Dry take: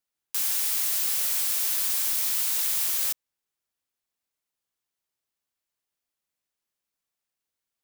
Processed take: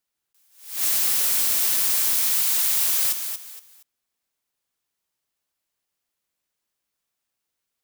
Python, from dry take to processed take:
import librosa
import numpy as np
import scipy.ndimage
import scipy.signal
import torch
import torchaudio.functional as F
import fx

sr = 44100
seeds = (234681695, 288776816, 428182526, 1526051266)

y = fx.low_shelf(x, sr, hz=470.0, db=6.5, at=(0.76, 2.17))
y = fx.echo_feedback(y, sr, ms=234, feedback_pct=28, wet_db=-7.5)
y = fx.attack_slew(y, sr, db_per_s=120.0)
y = y * 10.0 ** (4.0 / 20.0)